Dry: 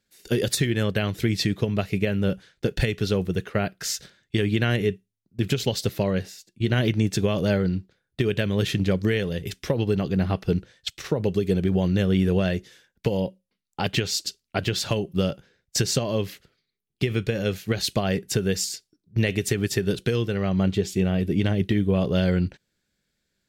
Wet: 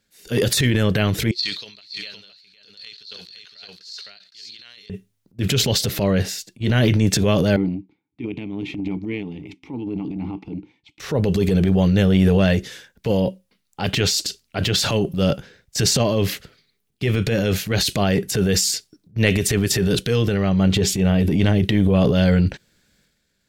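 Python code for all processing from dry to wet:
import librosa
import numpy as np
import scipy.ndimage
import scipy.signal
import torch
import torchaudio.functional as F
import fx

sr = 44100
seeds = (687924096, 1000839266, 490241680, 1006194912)

y = fx.chain(x, sr, fx.bandpass_q(hz=4300.0, q=16.0),
    fx.echo_single(ms=513, db=-3.5),
    fx.sustainer(db_per_s=95.0), at=(1.31, 4.9))
y = fx.chain(y, sr, fx.vowel_filter(vowel='u'),
    fx.low_shelf(hz=280.0, db=7.5), at=(7.56, 11.0))
y = fx.notch(y, sr, hz=360.0, q=12.0)
y = fx.transient(y, sr, attack_db=-8, sustain_db=8)
y = y * librosa.db_to_amplitude(6.0)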